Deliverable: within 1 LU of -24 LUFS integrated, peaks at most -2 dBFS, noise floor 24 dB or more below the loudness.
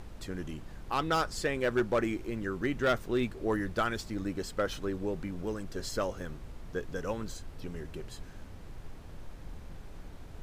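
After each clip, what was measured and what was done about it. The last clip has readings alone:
clipped samples 0.3%; clipping level -21.0 dBFS; noise floor -47 dBFS; noise floor target -58 dBFS; loudness -34.0 LUFS; peak level -21.0 dBFS; loudness target -24.0 LUFS
-> clip repair -21 dBFS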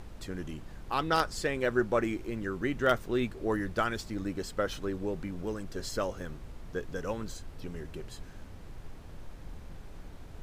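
clipped samples 0.0%; noise floor -47 dBFS; noise floor target -57 dBFS
-> noise print and reduce 10 dB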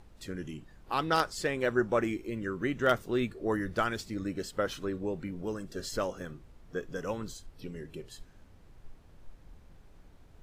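noise floor -57 dBFS; loudness -33.0 LUFS; peak level -12.0 dBFS; loudness target -24.0 LUFS
-> trim +9 dB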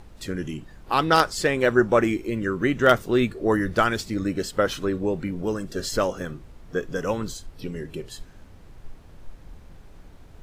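loudness -24.0 LUFS; peak level -3.0 dBFS; noise floor -48 dBFS

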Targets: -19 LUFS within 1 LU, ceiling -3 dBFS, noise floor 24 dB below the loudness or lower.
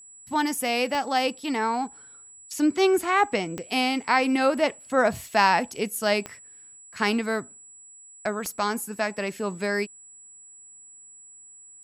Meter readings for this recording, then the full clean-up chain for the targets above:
clicks found 4; steady tone 7.8 kHz; tone level -46 dBFS; loudness -25.0 LUFS; peak level -6.0 dBFS; loudness target -19.0 LUFS
-> de-click; band-stop 7.8 kHz, Q 30; trim +6 dB; peak limiter -3 dBFS

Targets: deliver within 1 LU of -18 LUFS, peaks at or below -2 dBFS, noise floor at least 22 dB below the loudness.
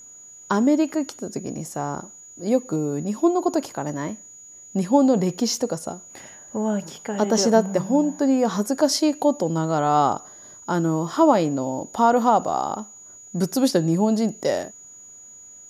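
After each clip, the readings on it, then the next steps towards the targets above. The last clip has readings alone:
steady tone 6.8 kHz; tone level -42 dBFS; loudness -22.0 LUFS; peak level -4.5 dBFS; loudness target -18.0 LUFS
-> band-stop 6.8 kHz, Q 30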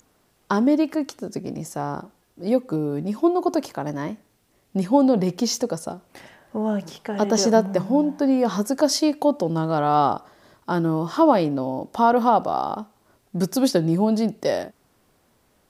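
steady tone not found; loudness -22.0 LUFS; peak level -4.5 dBFS; loudness target -18.0 LUFS
-> trim +4 dB; peak limiter -2 dBFS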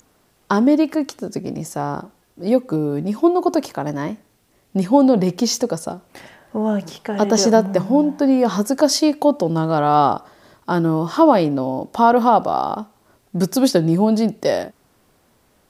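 loudness -18.0 LUFS; peak level -2.0 dBFS; noise floor -60 dBFS

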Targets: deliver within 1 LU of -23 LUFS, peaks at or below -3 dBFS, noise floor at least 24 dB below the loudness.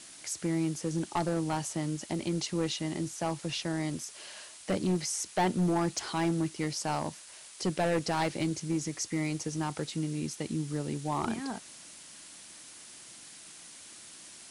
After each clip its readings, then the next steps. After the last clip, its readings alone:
clipped samples 1.2%; clipping level -23.0 dBFS; noise floor -50 dBFS; noise floor target -57 dBFS; loudness -32.5 LUFS; peak level -23.0 dBFS; loudness target -23.0 LUFS
-> clip repair -23 dBFS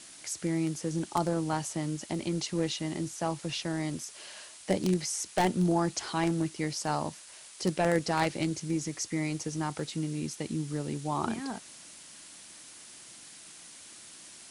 clipped samples 0.0%; noise floor -50 dBFS; noise floor target -56 dBFS
-> noise print and reduce 6 dB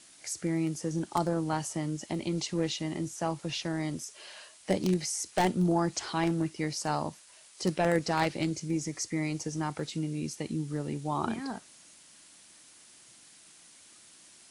noise floor -56 dBFS; loudness -32.0 LUFS; peak level -14.0 dBFS; loudness target -23.0 LUFS
-> trim +9 dB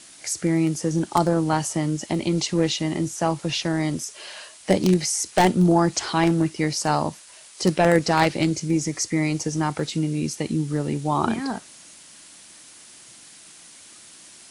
loudness -23.0 LUFS; peak level -5.0 dBFS; noise floor -47 dBFS

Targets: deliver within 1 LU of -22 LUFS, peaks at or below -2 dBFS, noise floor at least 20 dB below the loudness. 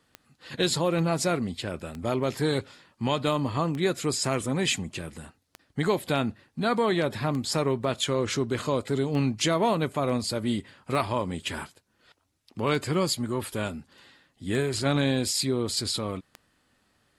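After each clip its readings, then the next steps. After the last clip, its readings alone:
clicks found 10; loudness -27.5 LUFS; peak level -11.5 dBFS; loudness target -22.0 LUFS
-> de-click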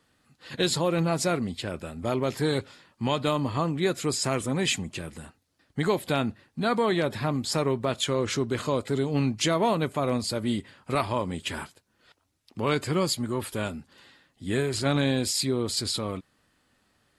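clicks found 0; loudness -27.5 LUFS; peak level -11.5 dBFS; loudness target -22.0 LUFS
-> trim +5.5 dB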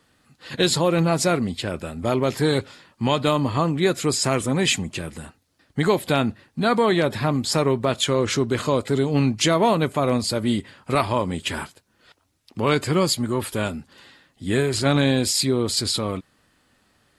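loudness -22.0 LUFS; peak level -6.0 dBFS; noise floor -65 dBFS

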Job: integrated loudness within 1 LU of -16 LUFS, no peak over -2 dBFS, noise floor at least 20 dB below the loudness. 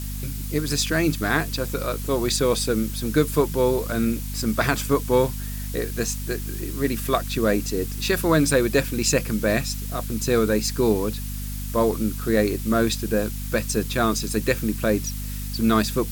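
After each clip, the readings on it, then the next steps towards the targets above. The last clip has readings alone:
hum 50 Hz; highest harmonic 250 Hz; hum level -28 dBFS; noise floor -30 dBFS; noise floor target -44 dBFS; loudness -23.5 LUFS; peak level -5.5 dBFS; loudness target -16.0 LUFS
-> de-hum 50 Hz, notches 5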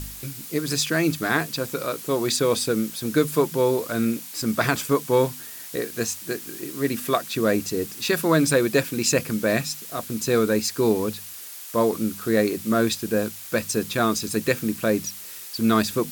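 hum not found; noise floor -39 dBFS; noise floor target -44 dBFS
-> noise reduction 6 dB, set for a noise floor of -39 dBFS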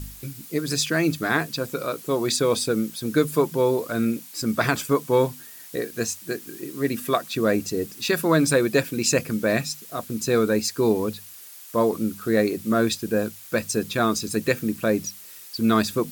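noise floor -43 dBFS; noise floor target -44 dBFS
-> noise reduction 6 dB, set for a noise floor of -43 dBFS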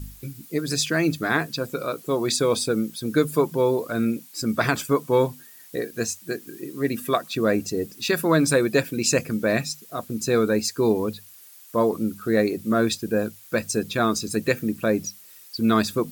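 noise floor -48 dBFS; loudness -24.0 LUFS; peak level -6.5 dBFS; loudness target -16.0 LUFS
-> trim +8 dB; peak limiter -2 dBFS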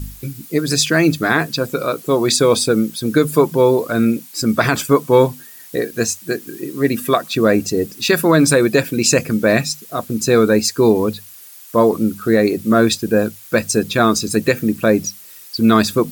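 loudness -16.5 LUFS; peak level -2.0 dBFS; noise floor -40 dBFS

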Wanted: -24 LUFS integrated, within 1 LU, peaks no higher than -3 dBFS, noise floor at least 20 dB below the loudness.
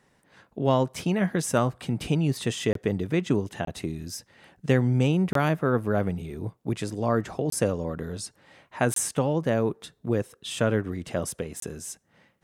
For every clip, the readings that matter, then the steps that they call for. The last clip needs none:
dropouts 6; longest dropout 23 ms; loudness -27.0 LUFS; peak level -9.0 dBFS; loudness target -24.0 LUFS
-> interpolate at 2.73/3.65/5.33/7.50/8.94/11.60 s, 23 ms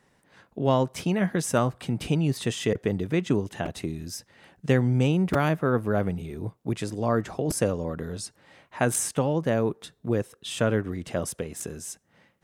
dropouts 0; loudness -27.0 LUFS; peak level -9.0 dBFS; loudness target -24.0 LUFS
-> trim +3 dB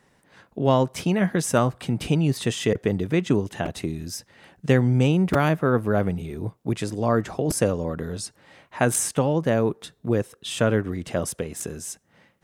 loudness -24.0 LUFS; peak level -6.0 dBFS; noise floor -64 dBFS

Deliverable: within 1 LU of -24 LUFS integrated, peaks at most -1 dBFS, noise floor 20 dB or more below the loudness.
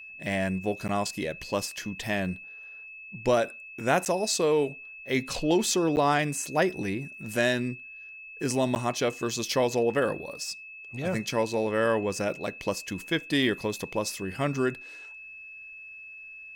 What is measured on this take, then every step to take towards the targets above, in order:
dropouts 4; longest dropout 9.8 ms; steady tone 2.6 kHz; tone level -42 dBFS; loudness -28.0 LUFS; peak level -10.0 dBFS; loudness target -24.0 LUFS
-> interpolate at 0.88/4.05/5.96/8.75 s, 9.8 ms; band-stop 2.6 kHz, Q 30; trim +4 dB

